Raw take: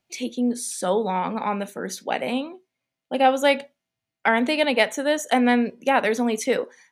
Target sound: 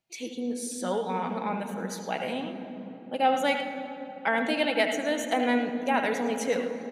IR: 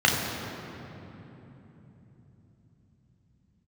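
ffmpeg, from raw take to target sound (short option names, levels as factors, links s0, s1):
-filter_complex "[0:a]aecho=1:1:6.2:0.3,asplit=2[s0][s1];[1:a]atrim=start_sample=2205,adelay=75[s2];[s1][s2]afir=irnorm=-1:irlink=0,volume=0.0708[s3];[s0][s3]amix=inputs=2:normalize=0,volume=0.447"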